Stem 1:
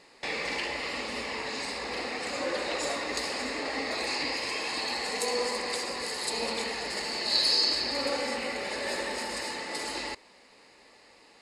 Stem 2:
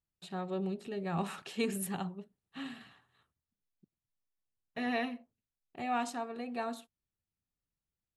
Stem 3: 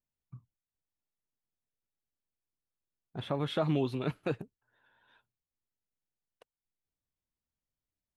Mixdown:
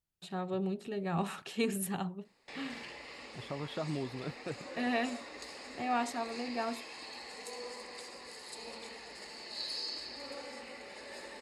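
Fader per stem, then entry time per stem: -14.5, +1.0, -7.5 dB; 2.25, 0.00, 0.20 s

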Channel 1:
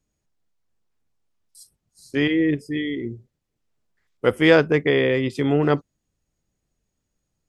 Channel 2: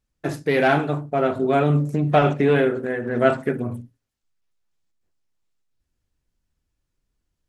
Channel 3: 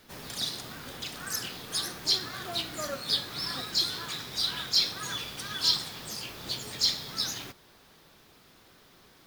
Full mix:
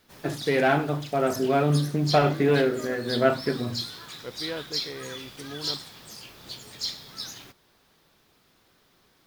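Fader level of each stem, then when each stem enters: -20.0, -3.5, -5.5 dB; 0.00, 0.00, 0.00 s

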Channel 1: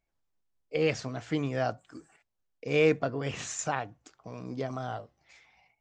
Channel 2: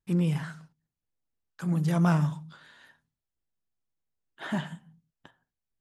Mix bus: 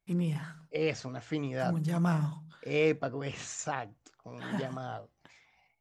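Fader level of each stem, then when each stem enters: -3.5, -5.0 dB; 0.00, 0.00 s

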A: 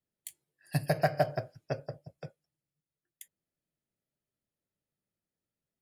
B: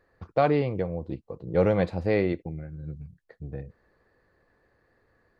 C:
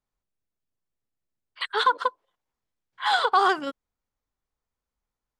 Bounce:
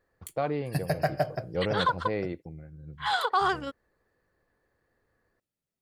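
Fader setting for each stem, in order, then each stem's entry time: 0.0, -7.5, -5.0 dB; 0.00, 0.00, 0.00 s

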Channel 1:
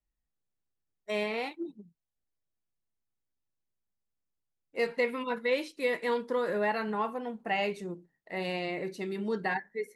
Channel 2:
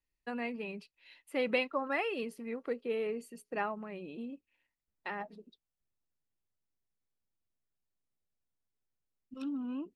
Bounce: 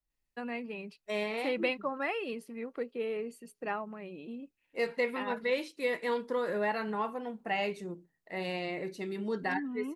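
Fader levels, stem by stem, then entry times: -2.0, -0.5 dB; 0.00, 0.10 s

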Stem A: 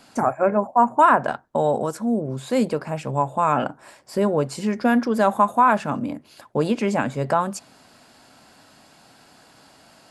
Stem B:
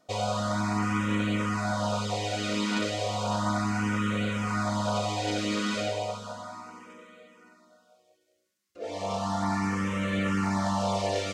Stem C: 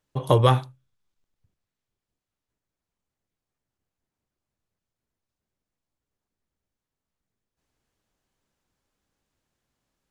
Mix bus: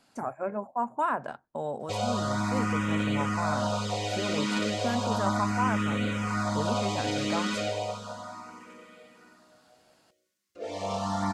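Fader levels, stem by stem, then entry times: -13.0 dB, -0.5 dB, off; 0.00 s, 1.80 s, off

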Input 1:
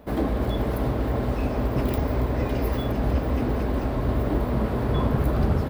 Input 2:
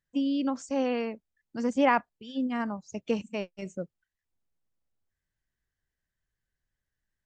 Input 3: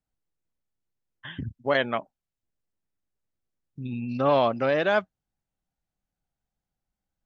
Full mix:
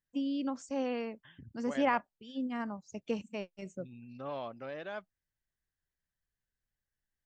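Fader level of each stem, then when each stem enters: off, -6.0 dB, -18.5 dB; off, 0.00 s, 0.00 s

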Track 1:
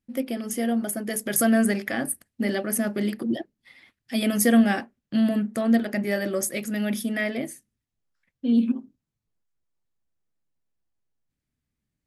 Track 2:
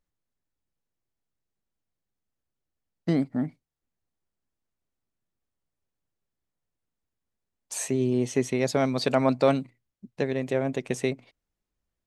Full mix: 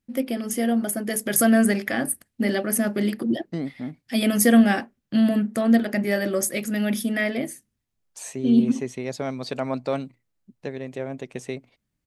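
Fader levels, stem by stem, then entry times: +2.5, -5.0 dB; 0.00, 0.45 s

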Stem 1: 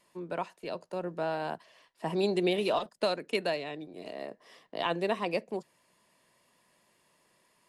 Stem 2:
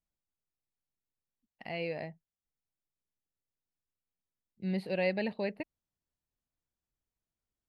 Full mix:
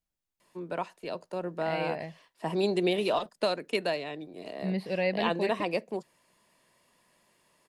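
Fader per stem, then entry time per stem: +1.0, +2.0 dB; 0.40, 0.00 s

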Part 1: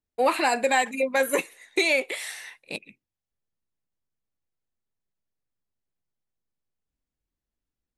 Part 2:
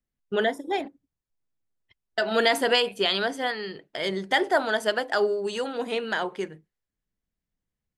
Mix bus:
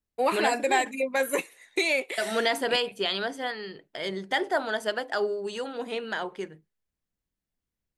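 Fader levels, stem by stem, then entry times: -3.0, -4.0 dB; 0.00, 0.00 s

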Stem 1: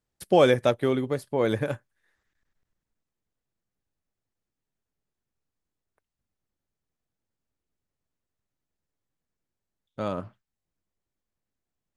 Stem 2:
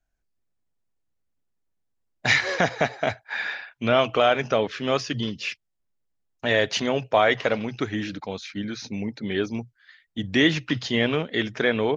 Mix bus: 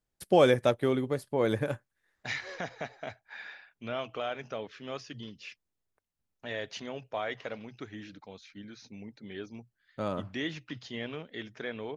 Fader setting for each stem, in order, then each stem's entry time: -3.0, -15.5 dB; 0.00, 0.00 s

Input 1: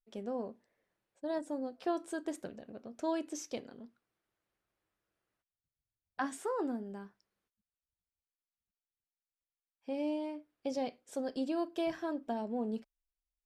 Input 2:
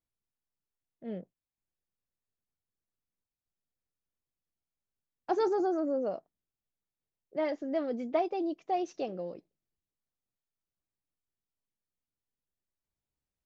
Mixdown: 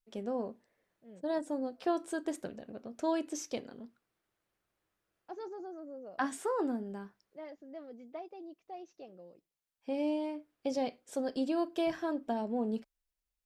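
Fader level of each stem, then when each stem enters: +2.5, -15.0 dB; 0.00, 0.00 s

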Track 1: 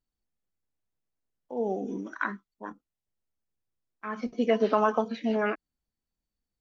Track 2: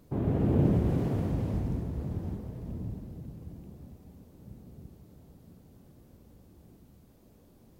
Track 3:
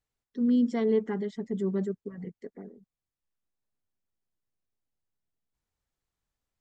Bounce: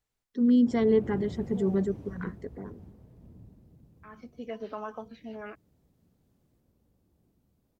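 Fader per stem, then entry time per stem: -14.0, -14.0, +2.5 dB; 0.00, 0.55, 0.00 s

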